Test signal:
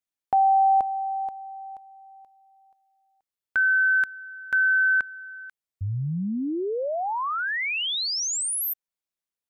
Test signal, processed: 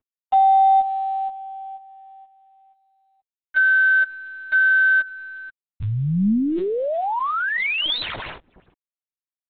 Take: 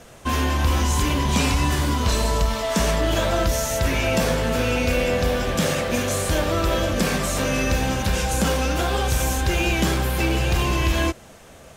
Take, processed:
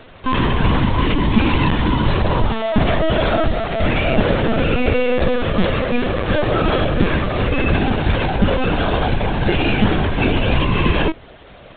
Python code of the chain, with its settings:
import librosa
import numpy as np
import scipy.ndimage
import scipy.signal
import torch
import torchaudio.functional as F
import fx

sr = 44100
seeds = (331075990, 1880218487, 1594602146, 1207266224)

y = fx.cvsd(x, sr, bps=32000)
y = fx.dynamic_eq(y, sr, hz=210.0, q=2.2, threshold_db=-39.0, ratio=4.0, max_db=6)
y = fx.lpc_vocoder(y, sr, seeds[0], excitation='pitch_kept', order=16)
y = y * 10.0 ** (4.5 / 20.0)